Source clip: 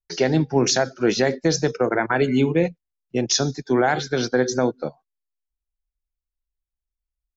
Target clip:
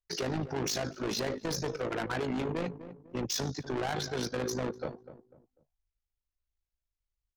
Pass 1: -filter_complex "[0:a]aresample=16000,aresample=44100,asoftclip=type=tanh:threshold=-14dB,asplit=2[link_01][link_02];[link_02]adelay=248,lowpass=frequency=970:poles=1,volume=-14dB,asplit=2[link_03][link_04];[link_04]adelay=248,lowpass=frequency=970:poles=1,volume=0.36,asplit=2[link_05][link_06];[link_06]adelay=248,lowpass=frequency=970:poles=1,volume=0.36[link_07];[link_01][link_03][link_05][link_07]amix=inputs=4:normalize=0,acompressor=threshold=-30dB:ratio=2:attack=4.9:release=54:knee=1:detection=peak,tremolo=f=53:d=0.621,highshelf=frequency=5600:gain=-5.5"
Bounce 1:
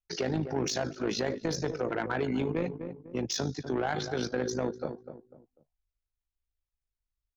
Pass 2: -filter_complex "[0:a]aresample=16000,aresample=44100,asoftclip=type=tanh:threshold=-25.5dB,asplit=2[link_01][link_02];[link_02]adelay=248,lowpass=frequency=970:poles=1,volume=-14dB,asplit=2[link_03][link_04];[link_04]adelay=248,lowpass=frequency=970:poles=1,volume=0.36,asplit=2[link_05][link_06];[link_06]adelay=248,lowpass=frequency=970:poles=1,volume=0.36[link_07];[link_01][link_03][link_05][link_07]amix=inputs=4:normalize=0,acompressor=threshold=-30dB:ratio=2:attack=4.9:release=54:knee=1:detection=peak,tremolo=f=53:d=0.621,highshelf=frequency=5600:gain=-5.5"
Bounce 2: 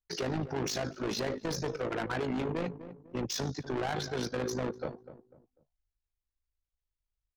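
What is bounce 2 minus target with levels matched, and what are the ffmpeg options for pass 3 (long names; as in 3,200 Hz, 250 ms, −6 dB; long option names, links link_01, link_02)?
8,000 Hz band −2.5 dB
-filter_complex "[0:a]aresample=16000,aresample=44100,asoftclip=type=tanh:threshold=-25.5dB,asplit=2[link_01][link_02];[link_02]adelay=248,lowpass=frequency=970:poles=1,volume=-14dB,asplit=2[link_03][link_04];[link_04]adelay=248,lowpass=frequency=970:poles=1,volume=0.36,asplit=2[link_05][link_06];[link_06]adelay=248,lowpass=frequency=970:poles=1,volume=0.36[link_07];[link_01][link_03][link_05][link_07]amix=inputs=4:normalize=0,acompressor=threshold=-30dB:ratio=2:attack=4.9:release=54:knee=1:detection=peak,tremolo=f=53:d=0.621"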